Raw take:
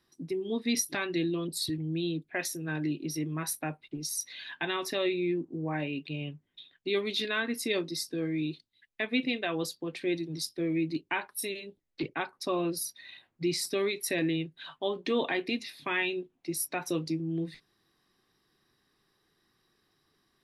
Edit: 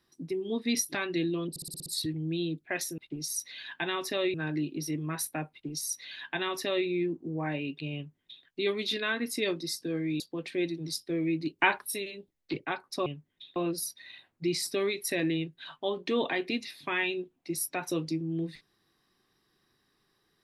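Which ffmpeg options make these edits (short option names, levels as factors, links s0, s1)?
-filter_complex "[0:a]asplit=14[s0][s1][s2][s3][s4][s5][s6][s7][s8][s9][s10][s11][s12][s13];[s0]atrim=end=1.562[s14];[s1]atrim=start=1.498:end=1.562[s15];[s2]atrim=start=1.498:end=1.562[s16];[s3]atrim=start=1.498:end=1.562[s17];[s4]atrim=start=1.498:end=1.562[s18];[s5]atrim=start=1.498:end=1.562[s19];[s6]atrim=start=1.498:end=2.622[s20];[s7]atrim=start=3.788:end=5.152[s21];[s8]atrim=start=2.618:end=8.482[s22];[s9]atrim=start=9.688:end=11.082[s23];[s10]atrim=start=11.078:end=11.362,asetpts=PTS-STARTPTS,volume=2.37[s24];[s11]atrim=start=11.358:end=12.552[s25];[s12]atrim=start=6.228:end=6.732[s26];[s13]atrim=start=12.548[s27];[s14][s15]acrossfade=d=0.004:c1=hsin:c2=hsin[s28];[s28][s16]acrossfade=d=0.004:c1=hsin:c2=hsin[s29];[s29][s17]acrossfade=d=0.004:c1=hsin:c2=hsin[s30];[s30][s18]acrossfade=d=0.004:c1=hsin:c2=hsin[s31];[s31][s19]acrossfade=d=0.004:c1=hsin:c2=hsin[s32];[s32][s20]acrossfade=d=0.004:c1=hsin:c2=hsin[s33];[s33][s21]acrossfade=d=0.004:c1=hsin:c2=hsin[s34];[s34][s22]acrossfade=d=0.004:c1=hsin:c2=hsin[s35];[s35][s23]acrossfade=d=0.004:c1=hsin:c2=hsin[s36];[s36][s24]acrossfade=d=0.004:c1=hsin:c2=hsin[s37];[s37][s25]acrossfade=d=0.004:c1=hsin:c2=hsin[s38];[s38][s26]acrossfade=d=0.004:c1=hsin:c2=hsin[s39];[s39][s27]acrossfade=d=0.004:c1=hsin:c2=hsin"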